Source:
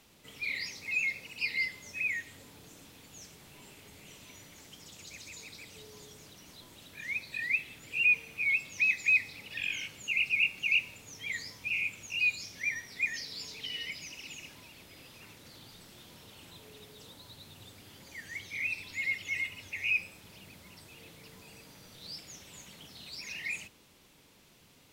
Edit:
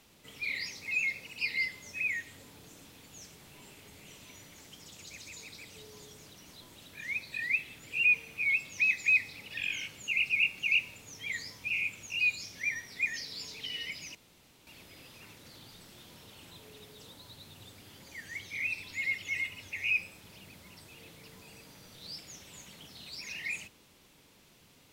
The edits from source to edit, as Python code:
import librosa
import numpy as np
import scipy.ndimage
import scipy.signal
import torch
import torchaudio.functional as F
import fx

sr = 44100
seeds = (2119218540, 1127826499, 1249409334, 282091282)

y = fx.edit(x, sr, fx.room_tone_fill(start_s=14.15, length_s=0.52), tone=tone)